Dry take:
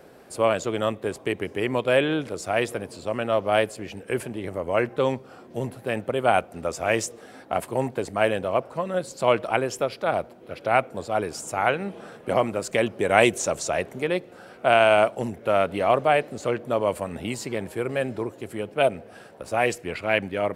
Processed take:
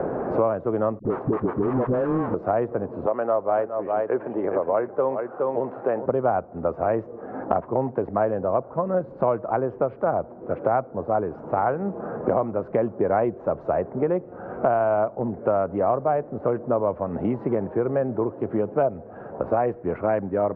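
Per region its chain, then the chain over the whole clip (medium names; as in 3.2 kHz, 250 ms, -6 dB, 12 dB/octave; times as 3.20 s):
0.99–2.34 s: square wave that keeps the level + phase dispersion highs, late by 66 ms, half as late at 380 Hz + compression, threshold -24 dBFS
3.06–6.06 s: high-pass 410 Hz + delay 415 ms -8.5 dB
whole clip: low-pass 1.2 kHz 24 dB/octave; three bands compressed up and down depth 100%; trim +1 dB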